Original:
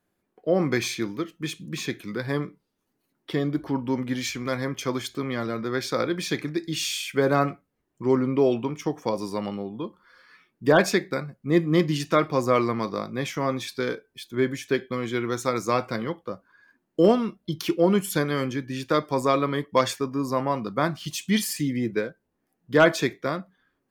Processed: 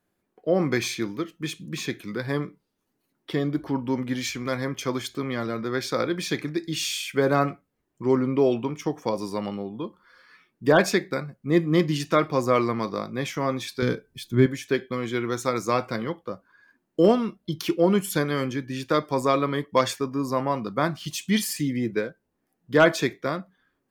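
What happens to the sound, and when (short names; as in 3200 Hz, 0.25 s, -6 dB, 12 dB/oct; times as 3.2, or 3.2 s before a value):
13.82–14.46 tone controls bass +14 dB, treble +3 dB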